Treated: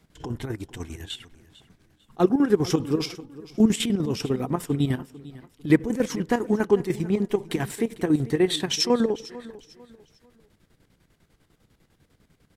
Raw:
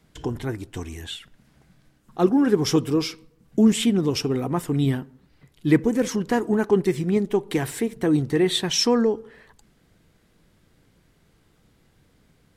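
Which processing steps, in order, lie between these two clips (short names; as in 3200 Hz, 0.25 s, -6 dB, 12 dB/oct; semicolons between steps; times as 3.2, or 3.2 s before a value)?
chopper 10 Hz, depth 65%, duty 55%; feedback echo 0.448 s, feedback 32%, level -18.5 dB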